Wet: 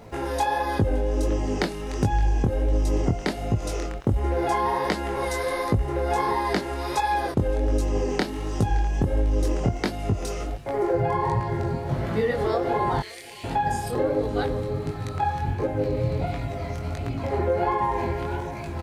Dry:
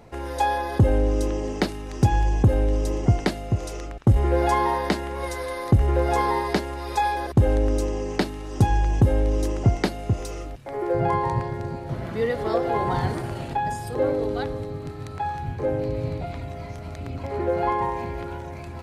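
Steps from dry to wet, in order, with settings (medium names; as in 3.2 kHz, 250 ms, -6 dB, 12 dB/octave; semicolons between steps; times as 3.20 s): 13.00–13.44 s: Chebyshev high-pass 2.1 kHz, order 4; compression 6:1, threshold -24 dBFS, peak gain reduction 11.5 dB; crackle 310 per s -54 dBFS; chorus 1.4 Hz, delay 18 ms, depth 6.9 ms; delay 569 ms -22 dB; trim +7 dB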